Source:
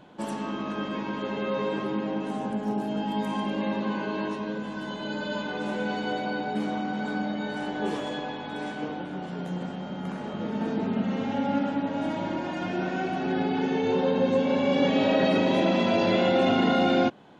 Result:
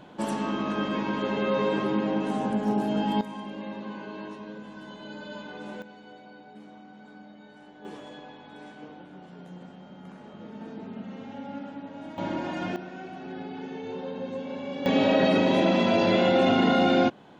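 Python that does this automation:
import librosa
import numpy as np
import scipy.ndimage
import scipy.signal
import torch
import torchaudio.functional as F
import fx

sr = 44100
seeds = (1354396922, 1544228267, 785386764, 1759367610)

y = fx.gain(x, sr, db=fx.steps((0.0, 3.0), (3.21, -8.5), (5.82, -18.5), (7.85, -11.5), (12.18, -0.5), (12.76, -11.0), (14.86, 1.0)))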